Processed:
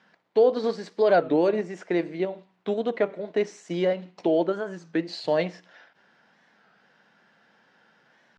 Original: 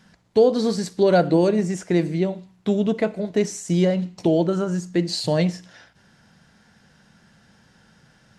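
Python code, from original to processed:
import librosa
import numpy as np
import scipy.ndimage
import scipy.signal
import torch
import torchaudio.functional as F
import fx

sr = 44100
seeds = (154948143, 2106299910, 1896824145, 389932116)

p1 = fx.level_steps(x, sr, step_db=21)
p2 = x + (p1 * librosa.db_to_amplitude(-3.0))
p3 = fx.bandpass_edges(p2, sr, low_hz=380.0, high_hz=3000.0)
p4 = fx.record_warp(p3, sr, rpm=33.33, depth_cents=160.0)
y = p4 * librosa.db_to_amplitude(-3.5)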